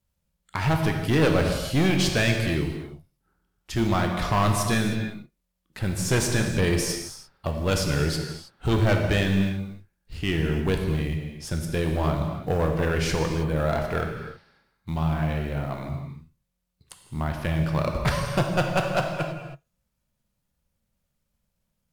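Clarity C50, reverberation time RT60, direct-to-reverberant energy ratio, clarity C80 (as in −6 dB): 4.5 dB, non-exponential decay, 2.5 dB, 5.5 dB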